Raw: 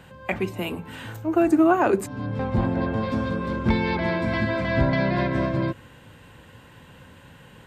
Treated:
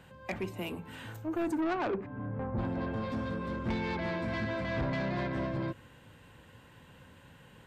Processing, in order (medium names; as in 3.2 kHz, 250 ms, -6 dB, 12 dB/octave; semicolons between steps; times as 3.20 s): 1.60–2.57 s: low-pass 3.5 kHz -> 1.4 kHz 24 dB/octave; saturation -20 dBFS, distortion -10 dB; trim -7.5 dB